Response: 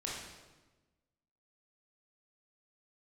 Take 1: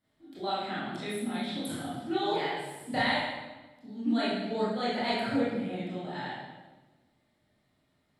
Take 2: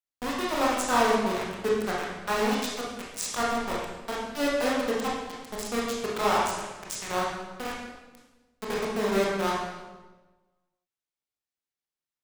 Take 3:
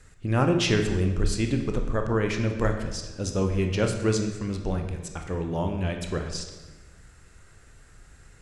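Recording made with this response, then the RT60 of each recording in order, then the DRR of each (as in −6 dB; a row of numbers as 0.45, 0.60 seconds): 2; 1.2, 1.2, 1.2 seconds; −10.5, −5.0, 4.0 decibels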